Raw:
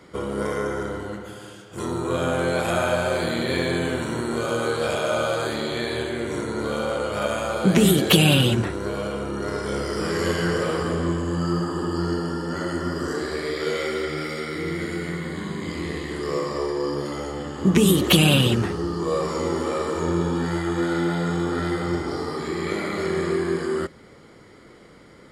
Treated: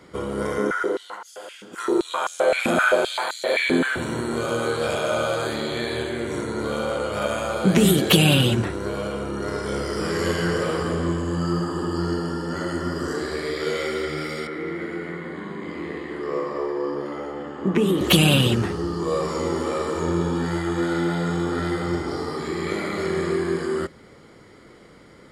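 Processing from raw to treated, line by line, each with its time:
0.58–3.96 s: step-sequenced high-pass 7.7 Hz 240–5600 Hz
14.47–18.01 s: three-band isolator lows -14 dB, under 200 Hz, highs -16 dB, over 2.6 kHz

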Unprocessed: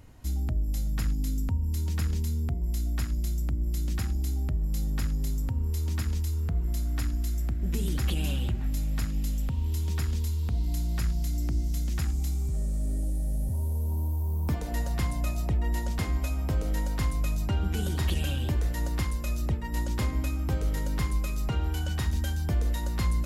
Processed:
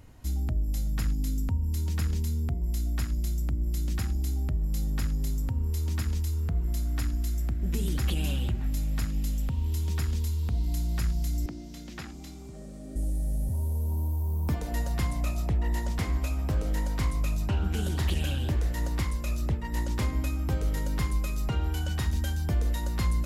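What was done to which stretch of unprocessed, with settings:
11.46–12.96 s: three-band isolator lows -19 dB, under 180 Hz, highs -13 dB, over 5.3 kHz
15.11–20.02 s: loudspeaker Doppler distortion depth 0.18 ms

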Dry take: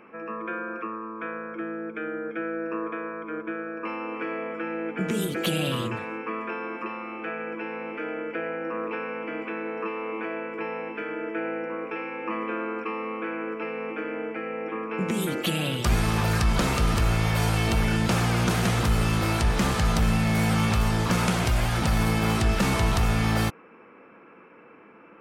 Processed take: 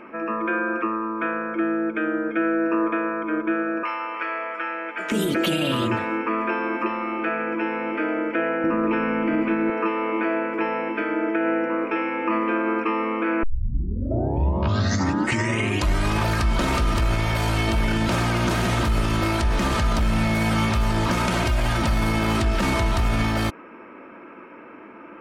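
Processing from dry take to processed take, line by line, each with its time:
3.83–5.12 s: high-pass 850 Hz
8.64–9.70 s: tone controls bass +14 dB, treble 0 dB
13.43 s: tape start 2.80 s
whole clip: treble shelf 5.8 kHz -7 dB; comb 3.2 ms, depth 46%; peak limiter -21.5 dBFS; trim +8 dB

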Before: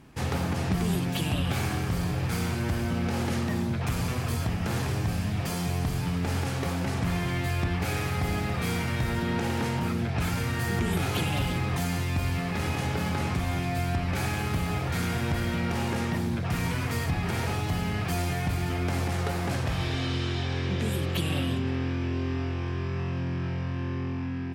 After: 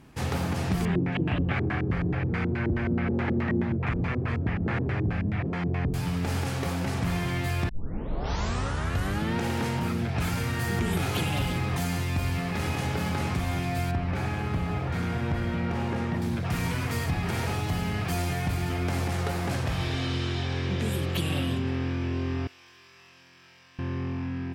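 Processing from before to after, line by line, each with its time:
0.85–5.94 s: LFO low-pass square 4.7 Hz 360–2000 Hz
7.69 s: tape start 1.67 s
13.91–16.22 s: low-pass 1.9 kHz 6 dB/octave
22.47–23.79 s: differentiator

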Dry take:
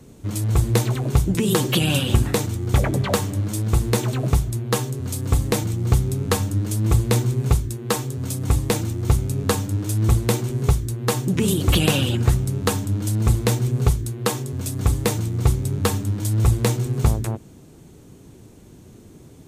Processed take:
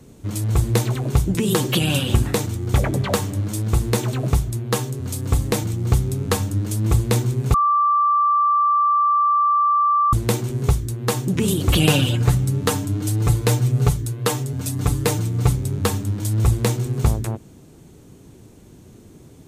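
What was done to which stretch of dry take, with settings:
7.54–10.13 s: bleep 1.17 kHz -14 dBFS
11.77–15.57 s: comb 6.8 ms

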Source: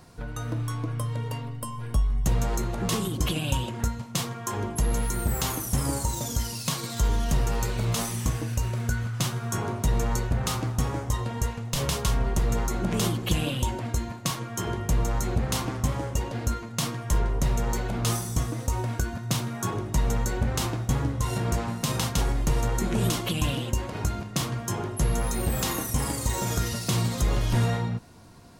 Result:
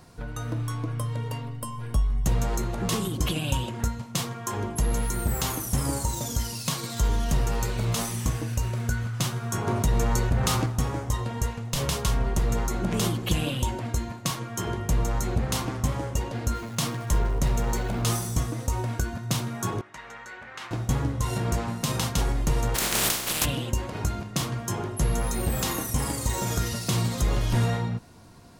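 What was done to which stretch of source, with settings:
9.67–10.66 s: level flattener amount 50%
16.54–18.41 s: jump at every zero crossing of -40 dBFS
19.81–20.71 s: band-pass filter 1.8 kHz, Q 1.7
22.74–23.44 s: spectral contrast reduction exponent 0.23

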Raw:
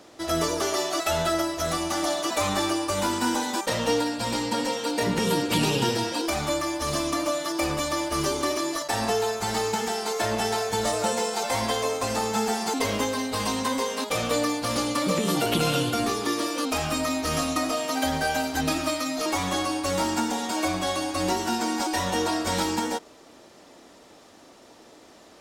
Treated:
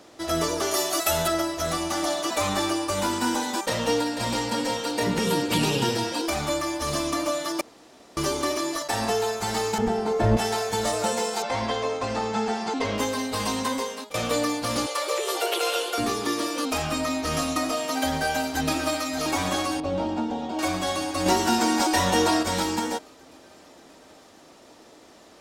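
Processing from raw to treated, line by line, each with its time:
0.71–1.28 s: peaking EQ 13 kHz +12.5 dB 1.1 oct
3.67–4.28 s: echo throw 490 ms, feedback 50%, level -8.5 dB
7.61–8.17 s: room tone
9.78–10.37 s: tilt EQ -4.5 dB/octave
11.42–12.98 s: distance through air 120 m
13.57–14.14 s: fade out equal-power, to -19 dB
14.86–15.98 s: steep high-pass 350 Hz 96 dB/octave
16.82–17.37 s: treble shelf 8.9 kHz -5.5 dB
18.09–19.08 s: echo throw 580 ms, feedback 70%, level -9.5 dB
19.80–20.59 s: FFT filter 700 Hz 0 dB, 1.3 kHz -10 dB, 2 kHz -13 dB, 3.1 kHz -7 dB, 11 kHz -29 dB
21.26–22.43 s: gain +4.5 dB

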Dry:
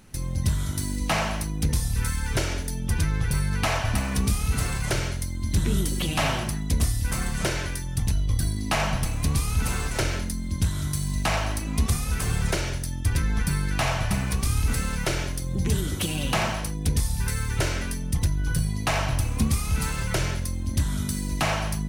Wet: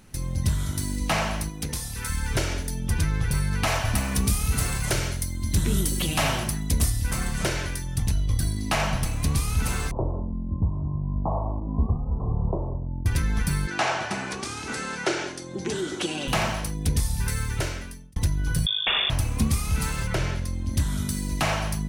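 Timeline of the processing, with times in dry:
1.49–2.10 s: bass shelf 200 Hz -11.5 dB
3.67–6.90 s: treble shelf 7.6 kHz +7 dB
9.91–13.06 s: steep low-pass 1.1 kHz 96 dB/octave
13.67–16.28 s: cabinet simulation 260–8000 Hz, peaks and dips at 360 Hz +9 dB, 800 Hz +5 dB, 1.5 kHz +5 dB
17.42–18.16 s: fade out
18.66–19.10 s: frequency inversion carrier 3.5 kHz
20.06–20.71 s: treble shelf 5 kHz -> 9.2 kHz -10.5 dB

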